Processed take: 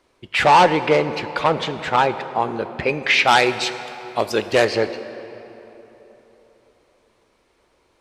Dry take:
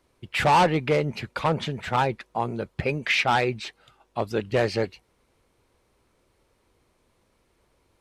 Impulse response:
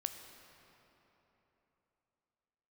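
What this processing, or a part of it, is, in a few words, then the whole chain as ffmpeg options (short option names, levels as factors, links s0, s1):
filtered reverb send: -filter_complex "[0:a]asettb=1/sr,asplit=3[s0][s1][s2];[s0]atrim=end=3.244[s3];[s1]atrim=start=3.24:end=4.65,asetpts=PTS-STARTPTS,afade=t=in:d=0.004:c=qsin,afade=t=out:st=1.406:d=0.004:c=qsin,aemphasis=mode=production:type=75kf[s4];[s2]atrim=start=4.646[s5];[s3][s4]acrossfade=d=0.004:c1=hsin:c2=qsin[s6];[s6][s5]acrossfade=d=0.004:c1=qsin:c2=hsin,asplit=2[s7][s8];[s8]highpass=230,lowpass=8600[s9];[1:a]atrim=start_sample=2205[s10];[s9][s10]afir=irnorm=-1:irlink=0,volume=1.58[s11];[s7][s11]amix=inputs=2:normalize=0,volume=0.891"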